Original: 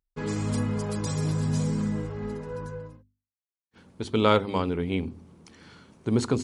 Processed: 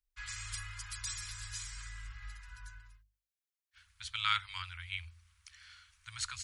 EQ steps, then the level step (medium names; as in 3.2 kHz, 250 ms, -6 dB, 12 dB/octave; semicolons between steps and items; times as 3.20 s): inverse Chebyshev band-stop 170–590 Hz, stop band 60 dB; -1.0 dB